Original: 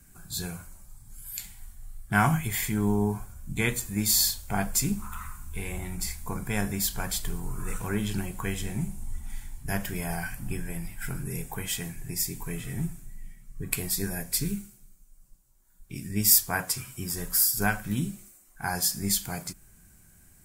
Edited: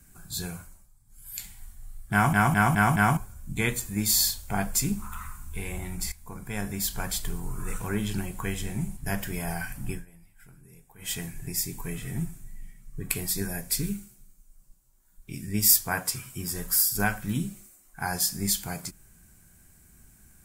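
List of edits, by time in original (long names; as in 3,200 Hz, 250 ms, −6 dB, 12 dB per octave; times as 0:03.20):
0:00.58–0:01.40: duck −12.5 dB, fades 0.33 s
0:02.12: stutter in place 0.21 s, 5 plays
0:06.12–0:07.00: fade in, from −12.5 dB
0:08.97–0:09.59: remove
0:10.54–0:11.74: duck −19 dB, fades 0.14 s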